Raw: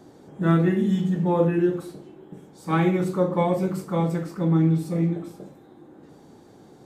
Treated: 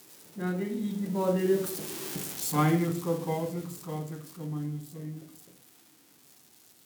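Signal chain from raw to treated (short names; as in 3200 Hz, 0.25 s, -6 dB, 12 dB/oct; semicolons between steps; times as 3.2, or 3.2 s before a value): switching spikes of -24.5 dBFS; Doppler pass-by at 2.08, 29 m/s, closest 8.2 m; gain +3.5 dB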